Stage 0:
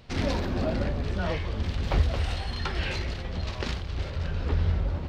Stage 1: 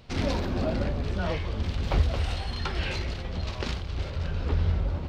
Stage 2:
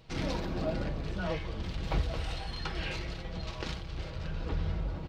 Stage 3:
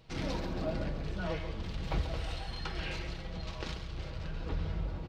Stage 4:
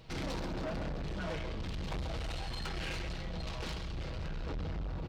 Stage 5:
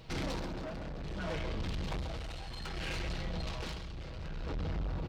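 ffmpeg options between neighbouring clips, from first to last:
-af "equalizer=f=1800:t=o:w=0.27:g=-3"
-af "aecho=1:1:6.2:0.45,volume=0.531"
-af "aecho=1:1:136:0.299,volume=0.75"
-af "asoftclip=type=tanh:threshold=0.0106,volume=1.78"
-af "tremolo=f=0.62:d=0.54,volume=1.33"

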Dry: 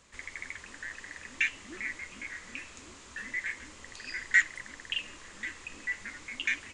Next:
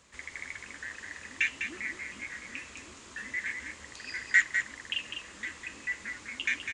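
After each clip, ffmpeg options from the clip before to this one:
-filter_complex "[0:a]highpass=46,asplit=2[s0][s1];[s1]aecho=0:1:202:0.447[s2];[s0][s2]amix=inputs=2:normalize=0"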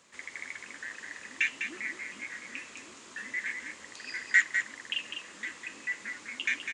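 -af "highpass=180"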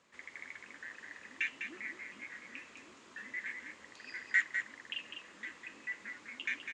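-af "aemphasis=mode=reproduction:type=50fm,volume=0.531"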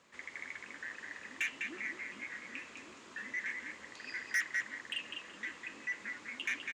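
-af "aecho=1:1:375:0.0841,asoftclip=type=tanh:threshold=0.0266,volume=1.5"

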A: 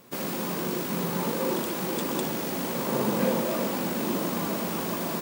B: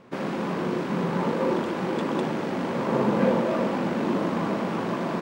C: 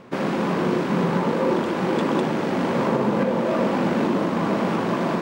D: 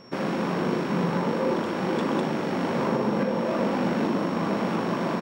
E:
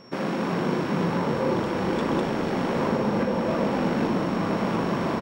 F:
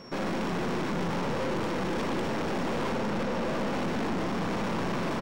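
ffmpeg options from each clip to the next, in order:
-af "lowpass=2000,aemphasis=mode=production:type=cd,volume=1.58"
-af "areverse,acompressor=mode=upward:threshold=0.0282:ratio=2.5,areverse,alimiter=limit=0.15:level=0:latency=1:release=439,volume=1.88"
-filter_complex "[0:a]aeval=exprs='val(0)+0.00316*sin(2*PI*5500*n/s)':c=same,asplit=2[s0][s1];[s1]adelay=40,volume=0.251[s2];[s0][s2]amix=inputs=2:normalize=0,volume=0.631"
-filter_complex "[0:a]asplit=8[s0][s1][s2][s3][s4][s5][s6][s7];[s1]adelay=293,afreqshift=-34,volume=0.355[s8];[s2]adelay=586,afreqshift=-68,volume=0.202[s9];[s3]adelay=879,afreqshift=-102,volume=0.115[s10];[s4]adelay=1172,afreqshift=-136,volume=0.0661[s11];[s5]adelay=1465,afreqshift=-170,volume=0.0376[s12];[s6]adelay=1758,afreqshift=-204,volume=0.0214[s13];[s7]adelay=2051,afreqshift=-238,volume=0.0122[s14];[s0][s8][s9][s10][s11][s12][s13][s14]amix=inputs=8:normalize=0"
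-af "aeval=exprs='(tanh(44.7*val(0)+0.55)-tanh(0.55))/44.7':c=same,volume=1.68"

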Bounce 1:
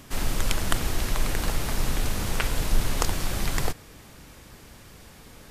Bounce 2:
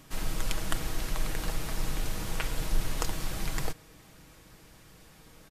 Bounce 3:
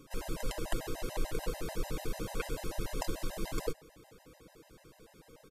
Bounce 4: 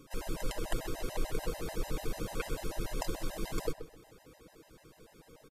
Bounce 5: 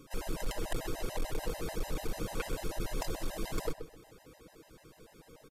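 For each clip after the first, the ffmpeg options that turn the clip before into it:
-af "aecho=1:1:6.3:0.39,volume=0.447"
-af "equalizer=f=450:t=o:w=1.4:g=11,afftfilt=real='re*gt(sin(2*PI*6.8*pts/sr)*(1-2*mod(floor(b*sr/1024/530),2)),0)':imag='im*gt(sin(2*PI*6.8*pts/sr)*(1-2*mod(floor(b*sr/1024/530),2)),0)':win_size=1024:overlap=0.75,volume=0.668"
-filter_complex "[0:a]asplit=2[s0][s1];[s1]adelay=129,lowpass=f=2400:p=1,volume=0.282,asplit=2[s2][s3];[s3]adelay=129,lowpass=f=2400:p=1,volume=0.2,asplit=2[s4][s5];[s5]adelay=129,lowpass=f=2400:p=1,volume=0.2[s6];[s0][s2][s4][s6]amix=inputs=4:normalize=0"
-af "volume=23.7,asoftclip=hard,volume=0.0422,volume=1.12"

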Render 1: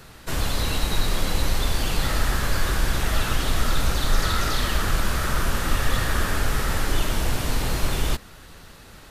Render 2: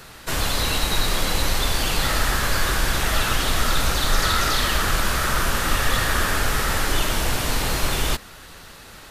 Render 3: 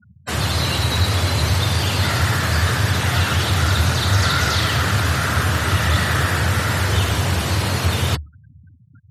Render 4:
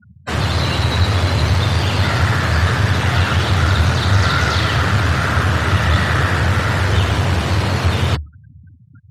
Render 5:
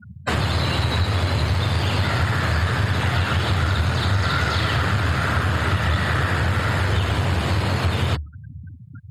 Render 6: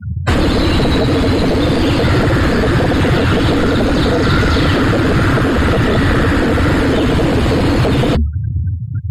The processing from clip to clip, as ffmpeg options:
-af "lowshelf=f=420:g=-6.5,volume=1.88"
-af "afftfilt=real='re*gte(hypot(re,im),0.0316)':imag='im*gte(hypot(re,im),0.0316)':win_size=1024:overlap=0.75,afreqshift=73,acontrast=30,volume=0.708"
-filter_complex "[0:a]aemphasis=mode=reproduction:type=50fm,asplit=2[s0][s1];[s1]aeval=exprs='clip(val(0),-1,0.0562)':c=same,volume=0.562[s2];[s0][s2]amix=inputs=2:normalize=0"
-af "bandreject=f=5800:w=5.4,acompressor=threshold=0.0501:ratio=3,volume=1.78"
-filter_complex "[0:a]highpass=f=48:p=1,acrossover=split=140[s0][s1];[s0]aeval=exprs='0.178*sin(PI/2*5.62*val(0)/0.178)':c=same[s2];[s2][s1]amix=inputs=2:normalize=0,volume=1.78"

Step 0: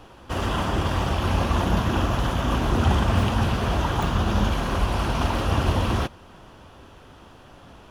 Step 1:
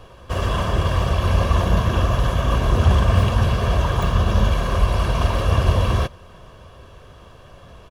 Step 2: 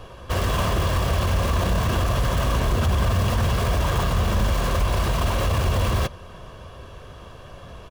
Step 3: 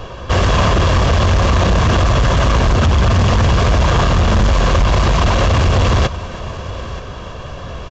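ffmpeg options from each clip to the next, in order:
-af "lowshelf=f=430:g=3,aecho=1:1:1.8:0.57"
-filter_complex "[0:a]asplit=2[s0][s1];[s1]aeval=exprs='(mod(10.6*val(0)+1,2)-1)/10.6':c=same,volume=0.398[s2];[s0][s2]amix=inputs=2:normalize=0,alimiter=limit=0.211:level=0:latency=1:release=20"
-af "aecho=1:1:928|1856|2784:0.126|0.0529|0.0222,aeval=exprs='0.251*sin(PI/2*1.58*val(0)/0.251)':c=same,aresample=16000,aresample=44100,volume=1.5"

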